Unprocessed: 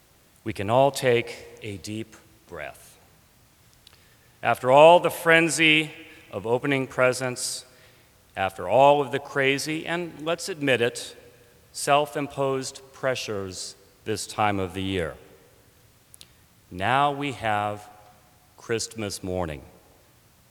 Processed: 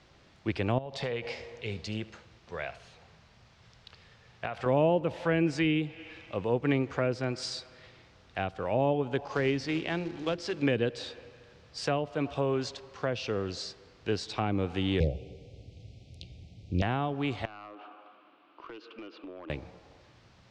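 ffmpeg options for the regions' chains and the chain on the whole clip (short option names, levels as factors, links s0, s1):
-filter_complex "[0:a]asettb=1/sr,asplit=3[s0][s1][s2];[s0]atrim=end=0.784[s3];[s1]atrim=start=0.78:end=4.66,asetpts=PTS-STARTPTS,afade=t=in:d=0.004:c=qsin,afade=t=out:st=3.876:d=0.004:c=qsin,equalizer=f=300:t=o:w=0.24:g=-14,acompressor=threshold=0.0447:ratio=16:attack=3.2:release=140:knee=1:detection=peak,aecho=1:1:75:0.133,atrim=end_sample=171108[s4];[s2]atrim=start=4.656[s5];[s3][s4]acrossfade=d=0.004:c1=hsin:c2=qsin[s6];[s6][s5]acrossfade=d=0.004:c1=qsin:c2=hsin,asettb=1/sr,asplit=3[s7][s8][s9];[s7]atrim=end=9.264[s10];[s8]atrim=start=9.26:end=10.62,asetpts=PTS-STARTPTS,afade=t=in:d=0.004:c=qsin,afade=t=out:st=1.356:d=0.004:c=qsin,bandreject=f=50:t=h:w=6,bandreject=f=100:t=h:w=6,bandreject=f=150:t=h:w=6,bandreject=f=200:t=h:w=6,bandreject=f=250:t=h:w=6,bandreject=f=300:t=h:w=6,bandreject=f=350:t=h:w=6,acrusher=bits=3:mode=log:mix=0:aa=0.000001[s11];[s9]atrim=start=10.616[s12];[s10][s11]acrossfade=d=0.004:c1=hsin:c2=qsin[s13];[s13][s12]acrossfade=d=0.004:c1=qsin:c2=hsin,asettb=1/sr,asplit=3[s14][s15][s16];[s14]atrim=end=15.004[s17];[s15]atrim=start=15:end=16.82,asetpts=PTS-STARTPTS,afade=t=in:d=0.004:c=qsin,afade=t=out:st=1.816:d=0.004:c=qsin,equalizer=f=72:w=0.4:g=13,aeval=exprs='0.168*(abs(mod(val(0)/0.168+3,4)-2)-1)':c=same,asuperstop=centerf=1300:order=12:qfactor=0.9[s18];[s16]atrim=start=16.816[s19];[s17][s18]acrossfade=d=0.004:c1=hsin:c2=qsin[s20];[s20][s19]acrossfade=d=0.004:c1=qsin:c2=hsin,asettb=1/sr,asplit=3[s21][s22][s23];[s21]atrim=end=17.454[s24];[s22]atrim=start=17.45:end=19.5,asetpts=PTS-STARTPTS,afade=t=in:d=0.004:c=qsin,afade=t=out:st=2.046:d=0.004:c=qsin,highpass=f=300:w=0.5412,highpass=f=300:w=1.3066,equalizer=f=310:t=q:w=4:g=9,equalizer=f=460:t=q:w=4:g=-5,equalizer=f=780:t=q:w=4:g=-6,equalizer=f=1200:t=q:w=4:g=7,equalizer=f=1900:t=q:w=4:g=-10,equalizer=f=2800:t=q:w=4:g=5,lowpass=f=2900:w=0.5412,lowpass=f=2900:w=1.3066,acompressor=threshold=0.01:ratio=8:attack=3.2:release=140:knee=1:detection=peak,aeval=exprs='clip(val(0),-1,0.00944)':c=same[s25];[s23]atrim=start=19.496[s26];[s24][s25]acrossfade=d=0.004:c1=hsin:c2=qsin[s27];[s27][s26]acrossfade=d=0.004:c1=qsin:c2=hsin,lowpass=f=5200:w=0.5412,lowpass=f=5200:w=1.3066,acrossover=split=390[s28][s29];[s29]acompressor=threshold=0.0282:ratio=10[s30];[s28][s30]amix=inputs=2:normalize=0"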